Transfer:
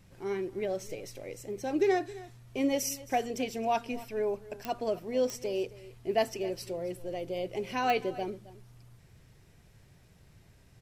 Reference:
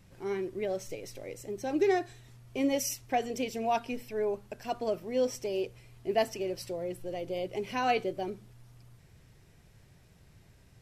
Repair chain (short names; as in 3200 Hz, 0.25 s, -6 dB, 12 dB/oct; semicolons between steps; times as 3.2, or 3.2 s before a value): de-click; inverse comb 0.268 s -18.5 dB